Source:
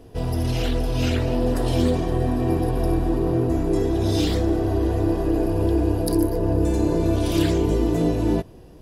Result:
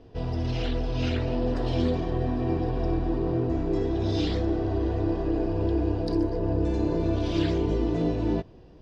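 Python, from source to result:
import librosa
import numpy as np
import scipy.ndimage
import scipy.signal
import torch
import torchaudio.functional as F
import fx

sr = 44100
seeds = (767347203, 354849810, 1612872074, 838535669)

y = scipy.signal.sosfilt(scipy.signal.butter(4, 5200.0, 'lowpass', fs=sr, output='sos'), x)
y = y * librosa.db_to_amplitude(-5.0)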